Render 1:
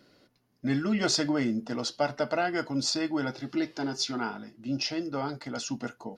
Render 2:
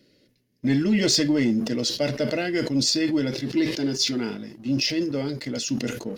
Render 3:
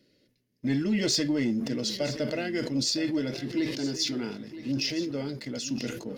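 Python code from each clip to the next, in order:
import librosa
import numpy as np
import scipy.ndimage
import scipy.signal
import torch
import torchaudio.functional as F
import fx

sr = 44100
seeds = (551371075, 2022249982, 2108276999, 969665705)

y1 = fx.band_shelf(x, sr, hz=1000.0, db=-15.5, octaves=1.3)
y1 = fx.leveller(y1, sr, passes=1)
y1 = fx.sustainer(y1, sr, db_per_s=73.0)
y1 = F.gain(torch.from_numpy(y1), 3.0).numpy()
y2 = y1 + 10.0 ** (-14.0 / 20.0) * np.pad(y1, (int(967 * sr / 1000.0), 0))[:len(y1)]
y2 = F.gain(torch.from_numpy(y2), -5.5).numpy()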